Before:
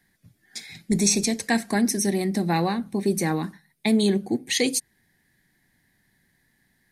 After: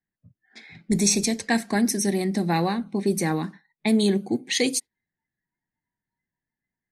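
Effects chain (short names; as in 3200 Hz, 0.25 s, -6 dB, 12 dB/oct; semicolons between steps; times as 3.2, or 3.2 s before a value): spectral noise reduction 21 dB; low-pass opened by the level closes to 1600 Hz, open at -19 dBFS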